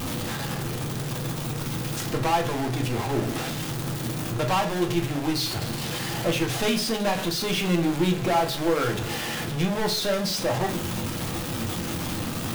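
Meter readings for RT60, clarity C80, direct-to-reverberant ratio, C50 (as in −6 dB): 0.40 s, 16.5 dB, 3.0 dB, 11.5 dB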